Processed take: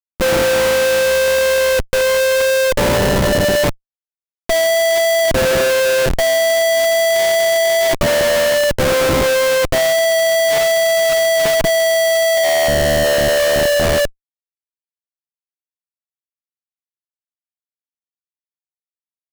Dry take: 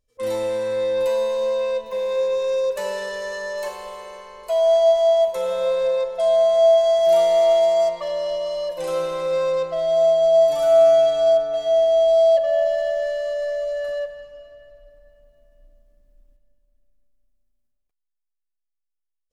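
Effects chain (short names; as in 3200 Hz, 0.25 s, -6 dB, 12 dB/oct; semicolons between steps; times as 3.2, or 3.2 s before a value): Schmitt trigger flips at -24.5 dBFS; gain +6.5 dB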